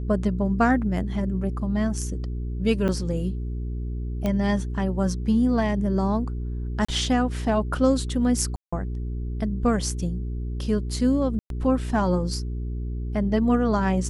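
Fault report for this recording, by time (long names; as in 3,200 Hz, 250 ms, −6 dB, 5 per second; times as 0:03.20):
mains hum 60 Hz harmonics 7 −29 dBFS
0:02.88–0:02.89: drop-out 7.7 ms
0:04.26: click −14 dBFS
0:06.85–0:06.88: drop-out 35 ms
0:08.56–0:08.72: drop-out 165 ms
0:11.39–0:11.50: drop-out 112 ms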